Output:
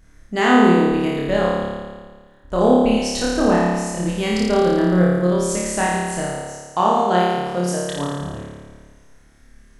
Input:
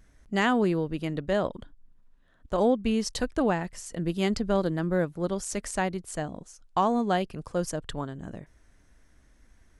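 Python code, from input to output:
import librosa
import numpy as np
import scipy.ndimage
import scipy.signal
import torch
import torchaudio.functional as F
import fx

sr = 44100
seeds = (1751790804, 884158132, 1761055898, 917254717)

p1 = fx.highpass(x, sr, hz=180.0, slope=6, at=(6.28, 8.08))
p2 = p1 + fx.room_flutter(p1, sr, wall_m=4.8, rt60_s=1.5, dry=0)
y = p2 * 10.0 ** (3.5 / 20.0)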